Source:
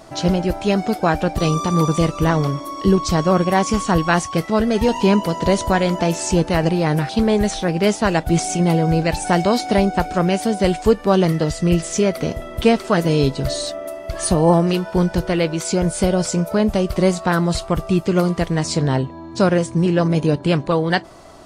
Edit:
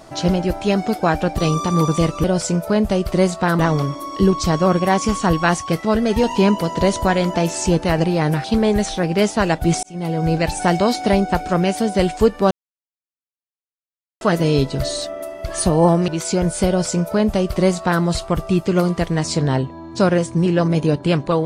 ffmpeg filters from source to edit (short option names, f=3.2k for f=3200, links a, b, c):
-filter_complex "[0:a]asplit=7[a][b][c][d][e][f][g];[a]atrim=end=2.242[h];[b]atrim=start=16.078:end=17.432[i];[c]atrim=start=2.238:end=8.48,asetpts=PTS-STARTPTS,afade=t=out:st=6.238:d=0.004:c=hsin[j];[d]atrim=start=8.48:end=11.16,asetpts=PTS-STARTPTS,afade=t=in:d=0.52,afade=t=out:st=2.676:d=0.004:c=hsin[k];[e]atrim=start=11.16:end=12.86,asetpts=PTS-STARTPTS,volume=0[l];[f]atrim=start=12.86:end=14.732,asetpts=PTS-STARTPTS,afade=t=in:d=0.004:c=hsin[m];[g]atrim=start=15.478[n];[h][i]acrossfade=d=0.004:c1=hsin:c2=hsin[o];[j][k][l][m]concat=n=4:v=0:a=1[p];[o][p]acrossfade=d=0.004:c1=hsin:c2=hsin[q];[q][n]acrossfade=d=0.004:c1=hsin:c2=hsin"